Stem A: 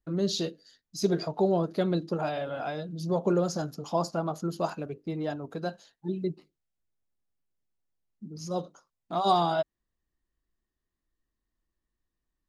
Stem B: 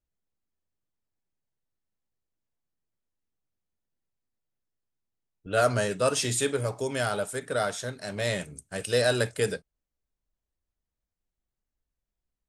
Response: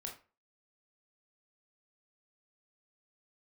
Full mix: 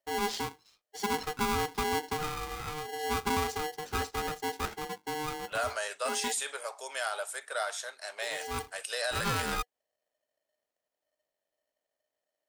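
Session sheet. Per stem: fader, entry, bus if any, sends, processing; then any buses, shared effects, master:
-6.0 dB, 0.00 s, no send, peaking EQ 130 Hz +11 dB 0.67 oct; polarity switched at an audio rate 610 Hz
-1.5 dB, 0.00 s, no send, high-pass 670 Hz 24 dB/octave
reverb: none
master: peak limiter -22 dBFS, peak gain reduction 7 dB

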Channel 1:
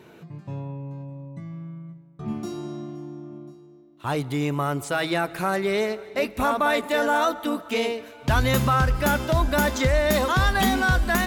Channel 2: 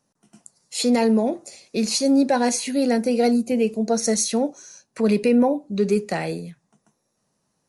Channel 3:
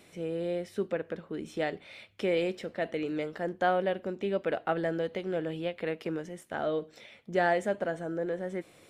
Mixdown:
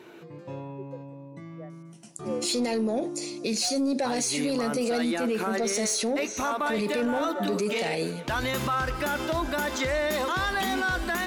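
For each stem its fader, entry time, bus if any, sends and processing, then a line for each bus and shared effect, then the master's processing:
-5.5 dB, 0.00 s, no send, peaking EQ 330 Hz +9 dB 0.46 oct
+1.0 dB, 1.70 s, no send, peaking EQ 1.2 kHz -10 dB 1.2 oct
-11.0 dB, 0.00 s, no send, spectral contrast expander 2.5:1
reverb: none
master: overdrive pedal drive 12 dB, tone 8 kHz, clips at -7.5 dBFS; peak limiter -20 dBFS, peak gain reduction 11.5 dB

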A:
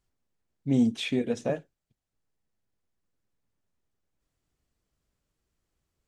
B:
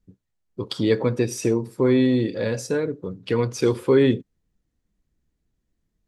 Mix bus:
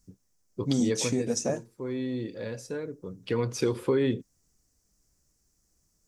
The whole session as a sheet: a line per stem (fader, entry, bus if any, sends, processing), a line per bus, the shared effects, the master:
+1.5 dB, 0.00 s, no send, resonant high shelf 4.4 kHz +10 dB, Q 3
0.91 s 0 dB -> 1.47 s -11 dB -> 2.86 s -11 dB -> 3.51 s -2.5 dB, 0.00 s, no send, auto duck -8 dB, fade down 1.65 s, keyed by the first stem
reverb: none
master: compression 3:1, threshold -23 dBFS, peak gain reduction 7 dB

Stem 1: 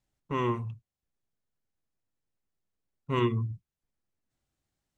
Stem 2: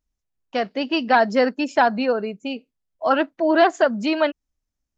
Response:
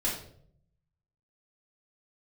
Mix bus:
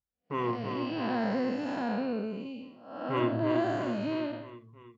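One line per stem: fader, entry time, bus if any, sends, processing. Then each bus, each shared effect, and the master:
-1.5 dB, 0.00 s, no send, echo send -5.5 dB, tone controls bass -9 dB, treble -13 dB
-8.5 dB, 0.00 s, no send, no echo send, spectral blur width 308 ms; bass shelf 150 Hz +12 dB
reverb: none
echo: feedback delay 327 ms, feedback 59%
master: gate -59 dBFS, range -15 dB; high-pass 77 Hz; bass shelf 200 Hz +5.5 dB

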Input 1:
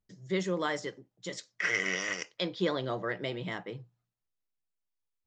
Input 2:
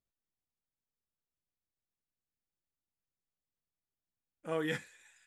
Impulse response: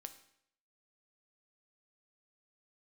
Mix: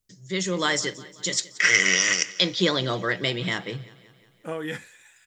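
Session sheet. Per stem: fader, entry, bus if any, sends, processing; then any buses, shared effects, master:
+1.5 dB, 0.00 s, no send, echo send -20 dB, FFT filter 140 Hz 0 dB, 740 Hz -5 dB, 7.6 kHz +11 dB
+0.5 dB, 0.00 s, no send, no echo send, compression, threshold -36 dBFS, peak gain reduction 7.5 dB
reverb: none
echo: feedback delay 179 ms, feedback 57%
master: level rider gain up to 8 dB

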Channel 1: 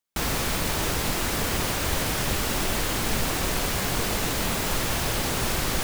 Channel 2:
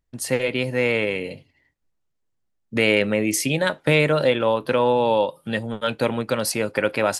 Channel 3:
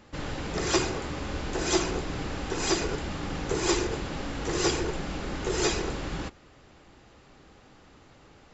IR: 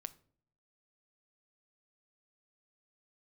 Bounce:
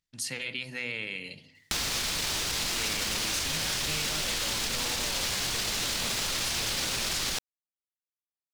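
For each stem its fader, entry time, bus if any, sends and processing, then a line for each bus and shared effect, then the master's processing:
+3.0 dB, 1.55 s, no bus, no send, peak limiter -21.5 dBFS, peak gain reduction 9 dB
-15.0 dB, 0.00 s, bus A, send -4.5 dB, peaking EQ 170 Hz +13.5 dB 2.7 oct; de-hum 125.5 Hz, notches 15; decay stretcher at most 100 dB/s
mute
bus A: 0.0 dB, Bessel high-pass 1.1 kHz, order 2; peak limiter -31.5 dBFS, peak gain reduction 9.5 dB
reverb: on, pre-delay 7 ms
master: peaking EQ 4.6 kHz +14.5 dB 2.6 oct; compression 3:1, threshold -31 dBFS, peak gain reduction 11.5 dB

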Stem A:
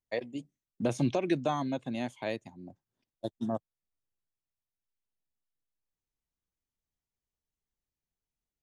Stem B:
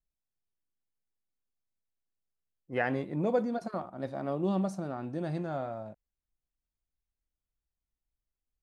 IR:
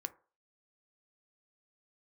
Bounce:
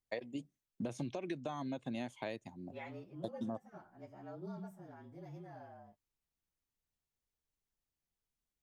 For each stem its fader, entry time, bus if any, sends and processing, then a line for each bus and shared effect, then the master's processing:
-1.0 dB, 0.00 s, no send, none
-14.5 dB, 0.00 s, no send, frequency axis rescaled in octaves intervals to 111%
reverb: none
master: compression 16:1, threshold -36 dBFS, peak gain reduction 13.5 dB

